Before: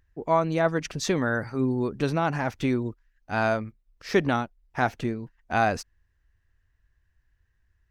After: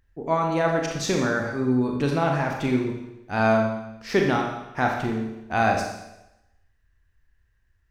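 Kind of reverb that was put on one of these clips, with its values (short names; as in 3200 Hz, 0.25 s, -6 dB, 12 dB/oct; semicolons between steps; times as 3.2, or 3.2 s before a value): Schroeder reverb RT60 0.92 s, combs from 28 ms, DRR 1 dB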